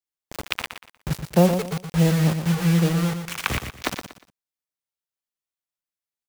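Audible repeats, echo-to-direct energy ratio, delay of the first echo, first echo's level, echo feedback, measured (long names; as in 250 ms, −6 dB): 3, −7.5 dB, 119 ms, −8.0 dB, 28%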